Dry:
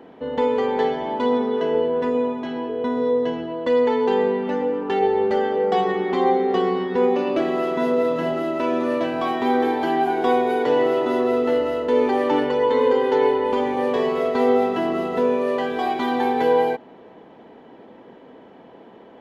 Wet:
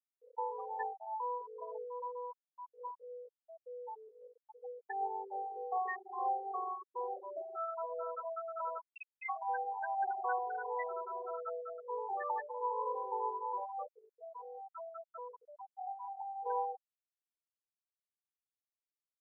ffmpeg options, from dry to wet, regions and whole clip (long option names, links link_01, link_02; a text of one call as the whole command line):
ffmpeg -i in.wav -filter_complex "[0:a]asettb=1/sr,asplit=3[link_01][link_02][link_03];[link_01]atrim=end=2.914[link_04];[link_02]atrim=start=2.91:end=4.64,asetpts=PTS-STARTPTS,afade=type=in:duration=0.004:curve=qsin,afade=type=out:start_time=1.726:duration=0.004:curve=qsin,lowpass=frequency=3500:poles=1,acompressor=threshold=-23dB:ratio=3:attack=3.2:release=140:knee=1:detection=peak[link_05];[link_03]atrim=start=4.636[link_06];[link_04][link_05]acrossfade=duration=0.004:curve1=hsin:curve2=qsin[link_07];[link_07][link_06]acrossfade=duration=0.004:curve1=qsin:curve2=hsin,asettb=1/sr,asplit=3[link_08][link_09][link_10];[link_08]atrim=end=8.814[link_11];[link_09]atrim=start=8.81:end=9.29,asetpts=PTS-STARTPTS,afade=type=in:duration=0.004:curve=qsin,afade=type=out:start_time=0.476:duration=0.004:curve=qsin,acrusher=bits=3:dc=4:mix=0:aa=0.000001,highpass=frequency=240:poles=1,lowpass=frequency=2700:width_type=q:width=0.5098,lowpass=frequency=2700:width_type=q:width=0.6013,lowpass=frequency=2700:width_type=q:width=0.9,lowpass=frequency=2700:width_type=q:width=2.563,afreqshift=-3200[link_12];[link_10]atrim=start=9.286[link_13];[link_11][link_12]acrossfade=duration=0.004:curve1=hsin:curve2=qsin[link_14];[link_14][link_13]acrossfade=duration=0.004:curve1=qsin:curve2=hsin,asettb=1/sr,asplit=3[link_15][link_16][link_17];[link_15]atrim=end=13.844[link_18];[link_16]atrim=start=13.84:end=16.46,asetpts=PTS-STARTPTS,afade=type=in:duration=0.004:curve=qsin,afade=type=out:start_time=2.616:duration=0.004:curve=qsin,bandreject=frequency=60:width_type=h:width=6,bandreject=frequency=120:width_type=h:width=6,bandreject=frequency=180:width_type=h:width=6,bandreject=frequency=240:width_type=h:width=6,bandreject=frequency=300:width_type=h:width=6,bandreject=frequency=360:width_type=h:width=6,bandreject=frequency=420:width_type=h:width=6,acrossover=split=320|1400[link_19][link_20][link_21];[link_19]acompressor=threshold=-28dB:ratio=4[link_22];[link_20]acompressor=threshold=-27dB:ratio=4[link_23];[link_21]acompressor=threshold=-34dB:ratio=4[link_24];[link_22][link_23][link_24]amix=inputs=3:normalize=0[link_25];[link_17]atrim=start=16.456[link_26];[link_18][link_25]acrossfade=duration=0.004:curve1=hsin:curve2=qsin[link_27];[link_27][link_26]acrossfade=duration=0.004:curve1=qsin:curve2=hsin,acrossover=split=570 2600:gain=0.0794 1 0.0708[link_28][link_29][link_30];[link_28][link_29][link_30]amix=inputs=3:normalize=0,afftfilt=real='re*gte(hypot(re,im),0.178)':imag='im*gte(hypot(re,im),0.178)':win_size=1024:overlap=0.75,aderivative,volume=9dB" out.wav